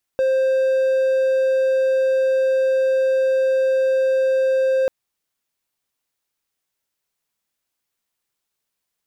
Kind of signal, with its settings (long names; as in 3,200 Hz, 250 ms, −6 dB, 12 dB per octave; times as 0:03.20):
tone triangle 527 Hz −13 dBFS 4.69 s